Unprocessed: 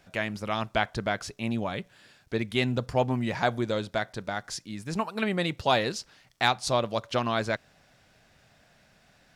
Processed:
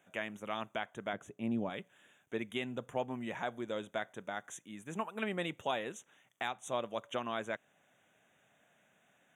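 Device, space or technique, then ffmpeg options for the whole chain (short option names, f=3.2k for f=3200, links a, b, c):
PA system with an anti-feedback notch: -filter_complex "[0:a]highpass=200,asuperstop=centerf=4700:order=12:qfactor=2,alimiter=limit=-15dB:level=0:latency=1:release=433,asettb=1/sr,asplit=3[a][b][c];[a]atrim=end=1.134[d];[b]atrim=start=1.13:end=1.7,asetpts=PTS-STARTPTS,afade=t=in:d=0.004:c=qsin,afade=t=out:st=0.566:d=0.004:c=qsin,tiltshelf=f=700:g=7.5[e];[c]atrim=start=1.696[f];[d][e]acrossfade=d=0.004:c1=hsin:c2=qsin[g];[g][f]acrossfade=d=0.004:c1=qsin:c2=hsin,volume=-7.5dB"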